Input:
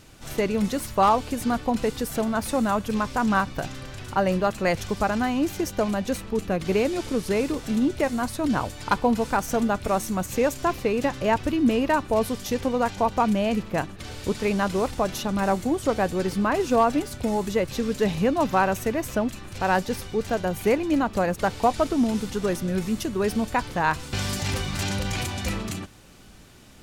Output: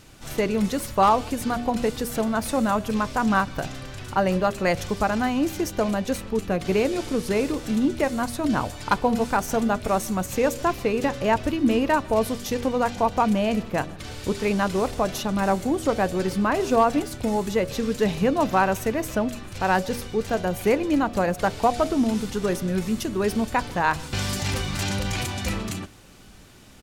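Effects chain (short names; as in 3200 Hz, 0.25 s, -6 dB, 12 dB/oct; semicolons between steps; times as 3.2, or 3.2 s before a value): de-hum 79.74 Hz, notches 9; speakerphone echo 0.15 s, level -23 dB; gain +1 dB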